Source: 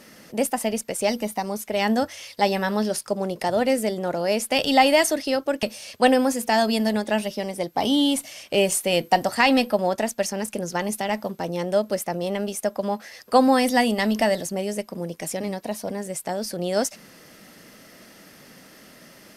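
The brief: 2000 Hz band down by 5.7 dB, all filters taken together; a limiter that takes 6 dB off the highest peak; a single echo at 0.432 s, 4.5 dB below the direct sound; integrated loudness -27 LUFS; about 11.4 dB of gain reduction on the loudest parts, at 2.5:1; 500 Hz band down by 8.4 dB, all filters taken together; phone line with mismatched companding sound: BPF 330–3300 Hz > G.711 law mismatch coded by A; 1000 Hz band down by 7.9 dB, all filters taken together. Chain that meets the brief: bell 500 Hz -7 dB; bell 1000 Hz -7 dB; bell 2000 Hz -4 dB; compressor 2.5:1, threshold -36 dBFS; limiter -26 dBFS; BPF 330–3300 Hz; echo 0.432 s -4.5 dB; G.711 law mismatch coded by A; gain +15.5 dB

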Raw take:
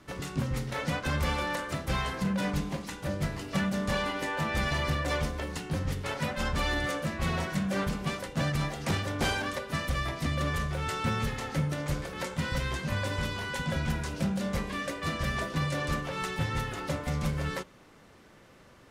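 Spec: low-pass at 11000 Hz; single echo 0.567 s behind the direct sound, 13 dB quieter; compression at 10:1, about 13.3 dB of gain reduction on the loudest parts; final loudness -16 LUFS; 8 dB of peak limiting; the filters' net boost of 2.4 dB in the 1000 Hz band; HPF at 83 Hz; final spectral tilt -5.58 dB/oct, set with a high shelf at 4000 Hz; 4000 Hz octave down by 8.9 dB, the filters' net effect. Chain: HPF 83 Hz; LPF 11000 Hz; bell 1000 Hz +4 dB; high shelf 4000 Hz -8 dB; bell 4000 Hz -8 dB; compressor 10:1, threshold -39 dBFS; limiter -36.5 dBFS; echo 0.567 s -13 dB; gain +29 dB

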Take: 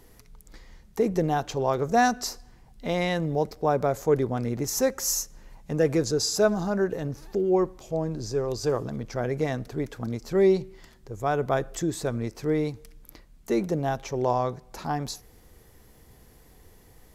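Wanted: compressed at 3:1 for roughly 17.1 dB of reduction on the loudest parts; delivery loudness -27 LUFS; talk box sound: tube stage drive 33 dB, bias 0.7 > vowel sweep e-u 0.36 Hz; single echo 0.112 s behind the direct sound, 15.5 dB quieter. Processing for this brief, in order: compressor 3:1, threshold -41 dBFS; echo 0.112 s -15.5 dB; tube stage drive 33 dB, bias 0.7; vowel sweep e-u 0.36 Hz; gain +26 dB

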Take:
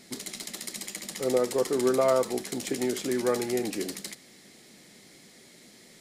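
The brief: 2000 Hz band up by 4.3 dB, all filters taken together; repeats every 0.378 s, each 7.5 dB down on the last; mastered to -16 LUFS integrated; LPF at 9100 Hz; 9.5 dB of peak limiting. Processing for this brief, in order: LPF 9100 Hz; bell 2000 Hz +5 dB; limiter -21.5 dBFS; feedback echo 0.378 s, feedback 42%, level -7.5 dB; gain +15.5 dB

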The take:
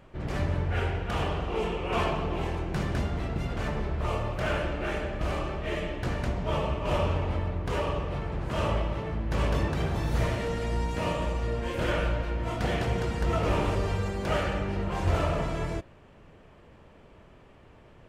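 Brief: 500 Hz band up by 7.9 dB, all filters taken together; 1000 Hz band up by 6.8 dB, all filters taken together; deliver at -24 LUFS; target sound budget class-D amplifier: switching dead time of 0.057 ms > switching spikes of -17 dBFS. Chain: bell 500 Hz +8 dB; bell 1000 Hz +6 dB; switching dead time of 0.057 ms; switching spikes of -17 dBFS; gain +1 dB

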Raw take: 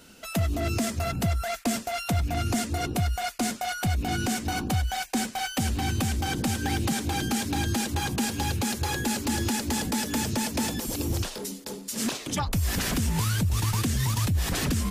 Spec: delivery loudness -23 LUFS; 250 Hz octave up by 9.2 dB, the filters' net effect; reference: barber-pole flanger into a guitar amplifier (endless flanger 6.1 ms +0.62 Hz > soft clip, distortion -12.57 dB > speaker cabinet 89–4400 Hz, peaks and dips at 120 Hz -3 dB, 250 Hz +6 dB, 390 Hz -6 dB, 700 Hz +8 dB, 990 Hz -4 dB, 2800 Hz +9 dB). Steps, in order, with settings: bell 250 Hz +7 dB; endless flanger 6.1 ms +0.62 Hz; soft clip -23.5 dBFS; speaker cabinet 89–4400 Hz, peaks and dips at 120 Hz -3 dB, 250 Hz +6 dB, 390 Hz -6 dB, 700 Hz +8 dB, 990 Hz -4 dB, 2800 Hz +9 dB; gain +6.5 dB

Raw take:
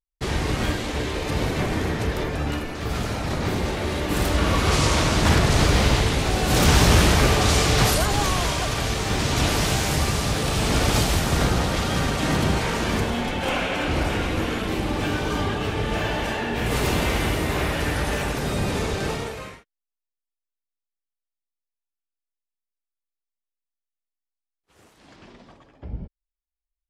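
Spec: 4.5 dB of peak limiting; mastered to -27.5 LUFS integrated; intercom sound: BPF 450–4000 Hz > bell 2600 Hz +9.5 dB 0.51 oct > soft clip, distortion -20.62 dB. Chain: limiter -11.5 dBFS; BPF 450–4000 Hz; bell 2600 Hz +9.5 dB 0.51 oct; soft clip -16.5 dBFS; gain -2.5 dB

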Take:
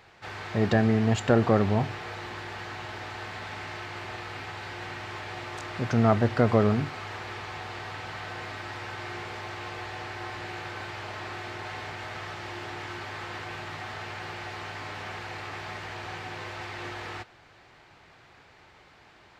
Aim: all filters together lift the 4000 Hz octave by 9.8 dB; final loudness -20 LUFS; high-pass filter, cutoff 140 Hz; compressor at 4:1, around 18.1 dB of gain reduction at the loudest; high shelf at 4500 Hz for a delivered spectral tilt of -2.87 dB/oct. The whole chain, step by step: HPF 140 Hz; bell 4000 Hz +8.5 dB; high shelf 4500 Hz +8 dB; compressor 4:1, threshold -39 dBFS; gain +19.5 dB

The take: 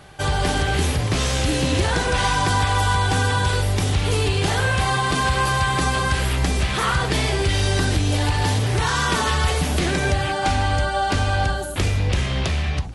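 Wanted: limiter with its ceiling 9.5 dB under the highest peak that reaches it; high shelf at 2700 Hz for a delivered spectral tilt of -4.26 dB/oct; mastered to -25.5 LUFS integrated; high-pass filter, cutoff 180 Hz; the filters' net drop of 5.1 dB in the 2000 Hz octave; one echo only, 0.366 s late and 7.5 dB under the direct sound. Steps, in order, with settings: HPF 180 Hz; bell 2000 Hz -5 dB; high shelf 2700 Hz -5.5 dB; limiter -20.5 dBFS; echo 0.366 s -7.5 dB; gain +3 dB

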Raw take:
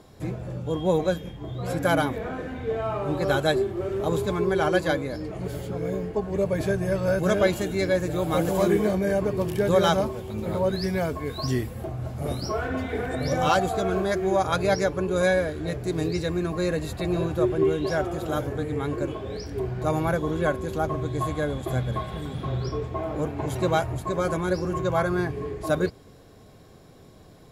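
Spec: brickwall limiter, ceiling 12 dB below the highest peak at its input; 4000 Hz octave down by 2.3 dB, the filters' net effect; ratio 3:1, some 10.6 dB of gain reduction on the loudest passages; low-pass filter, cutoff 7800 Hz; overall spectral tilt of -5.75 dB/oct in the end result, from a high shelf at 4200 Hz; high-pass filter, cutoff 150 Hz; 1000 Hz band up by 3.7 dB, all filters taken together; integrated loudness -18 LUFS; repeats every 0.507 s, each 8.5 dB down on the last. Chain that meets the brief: HPF 150 Hz; LPF 7800 Hz; bell 1000 Hz +5 dB; bell 4000 Hz -4.5 dB; high shelf 4200 Hz +3 dB; compressor 3:1, threshold -29 dBFS; limiter -28 dBFS; feedback echo 0.507 s, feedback 38%, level -8.5 dB; gain +18 dB

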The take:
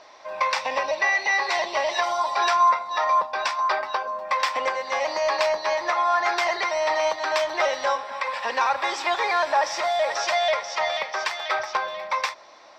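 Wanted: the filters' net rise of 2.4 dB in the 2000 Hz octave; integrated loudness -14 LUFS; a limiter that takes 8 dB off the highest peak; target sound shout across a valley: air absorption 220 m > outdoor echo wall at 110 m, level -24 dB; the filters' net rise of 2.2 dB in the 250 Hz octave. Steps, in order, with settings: bell 250 Hz +4 dB; bell 2000 Hz +5 dB; limiter -15.5 dBFS; air absorption 220 m; outdoor echo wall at 110 m, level -24 dB; gain +12 dB

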